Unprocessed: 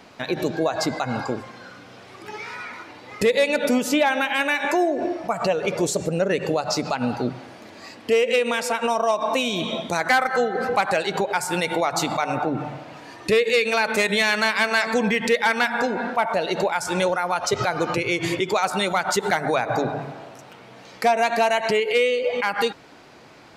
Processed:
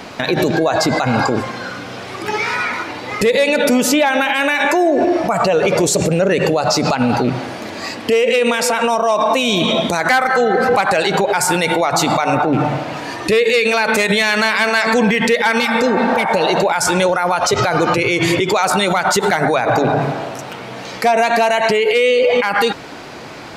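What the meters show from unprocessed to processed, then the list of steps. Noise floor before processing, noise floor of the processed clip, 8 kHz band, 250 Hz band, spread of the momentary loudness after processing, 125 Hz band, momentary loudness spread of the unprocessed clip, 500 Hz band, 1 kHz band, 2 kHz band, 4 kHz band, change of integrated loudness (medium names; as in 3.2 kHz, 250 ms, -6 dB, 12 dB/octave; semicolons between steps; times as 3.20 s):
-45 dBFS, -30 dBFS, +9.0 dB, +8.5 dB, 11 LU, +10.0 dB, 14 LU, +7.0 dB, +7.5 dB, +6.5 dB, +7.5 dB, +7.0 dB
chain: rattle on loud lows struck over -27 dBFS, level -31 dBFS; spectral replace 15.61–16.57 s, 590–2000 Hz both; loudness maximiser +20.5 dB; trim -5.5 dB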